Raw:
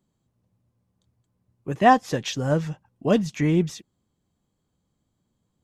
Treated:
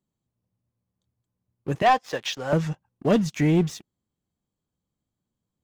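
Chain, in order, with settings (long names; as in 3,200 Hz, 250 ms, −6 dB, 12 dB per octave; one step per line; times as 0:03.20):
0:01.82–0:02.53: three-way crossover with the lows and the highs turned down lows −16 dB, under 450 Hz, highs −13 dB, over 6,000 Hz
leveller curve on the samples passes 2
level −5.5 dB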